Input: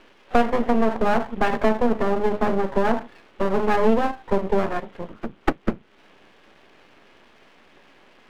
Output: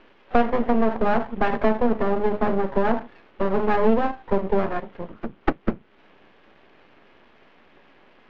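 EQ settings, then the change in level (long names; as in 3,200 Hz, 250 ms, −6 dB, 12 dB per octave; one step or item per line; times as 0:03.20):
high-frequency loss of the air 200 metres
0.0 dB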